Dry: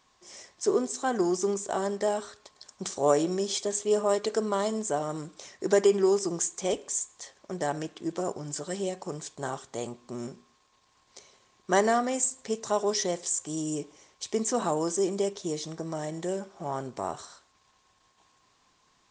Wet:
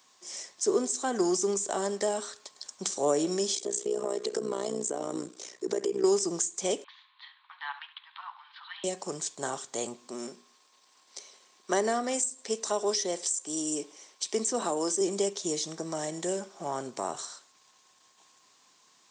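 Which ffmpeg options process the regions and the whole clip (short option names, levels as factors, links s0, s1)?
-filter_complex "[0:a]asettb=1/sr,asplit=3[s0][s1][s2];[s0]atrim=end=3.554[s3];[s1]atrim=start=3.55:end=6.04,asetpts=PTS-STARTPTS,afade=t=in:d=0.004:c=qsin,afade=t=out:st=2.486:d=0.004:c=qsin,equalizer=f=370:w=1.3:g=9.5,acompressor=threshold=0.0631:ratio=5:attack=3.2:release=140:knee=1:detection=peak,tremolo=f=61:d=0.857[s4];[s2]atrim=start=6.036[s5];[s3][s4]acrossfade=d=0.004:c1=hsin:c2=qsin[s6];[s6][s5]acrossfade=d=0.004:c1=qsin:c2=hsin,asettb=1/sr,asplit=3[s7][s8][s9];[s7]atrim=end=6.844[s10];[s8]atrim=start=6.84:end=8.84,asetpts=PTS-STARTPTS,afade=t=in:d=0.004:c=qsin,afade=t=out:st=1.996:d=0.004:c=qsin,asuperpass=centerf=1900:order=20:qfactor=0.6,aecho=1:1:70:0.2,atrim=end_sample=88200[s11];[s9]atrim=start=8.836[s12];[s10][s11]acrossfade=d=0.004:c1=hsin:c2=qsin[s13];[s13][s12]acrossfade=d=0.004:c1=qsin:c2=hsin,asettb=1/sr,asplit=3[s14][s15][s16];[s14]atrim=end=10.074[s17];[s15]atrim=start=10.07:end=15.01,asetpts=PTS-STARTPTS,afade=t=in:d=0.004:c=qsin,afade=t=out:st=4.936:d=0.004:c=qsin,highpass=220,bandreject=f=6800:w=12[s18];[s16]atrim=start=15.006[s19];[s17][s18]acrossfade=d=0.004:c1=hsin:c2=qsin[s20];[s20][s19]acrossfade=d=0.004:c1=qsin:c2=hsin,highpass=200,highshelf=f=4300:g=11.5,acrossover=split=480[s21][s22];[s22]acompressor=threshold=0.0355:ratio=4[s23];[s21][s23]amix=inputs=2:normalize=0"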